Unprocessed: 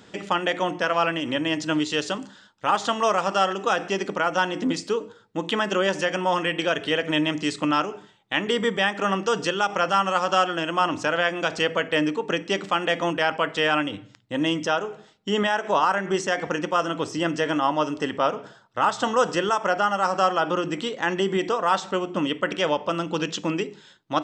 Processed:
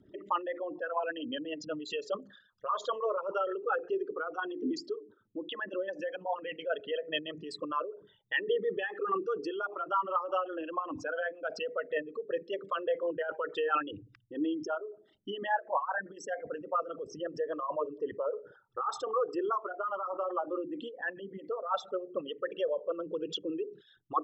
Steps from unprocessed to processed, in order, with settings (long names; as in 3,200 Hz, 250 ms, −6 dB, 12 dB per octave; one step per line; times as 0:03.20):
spectral envelope exaggerated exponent 3
rotating-speaker cabinet horn 5 Hz
flanger whose copies keep moving one way falling 0.2 Hz
level −2.5 dB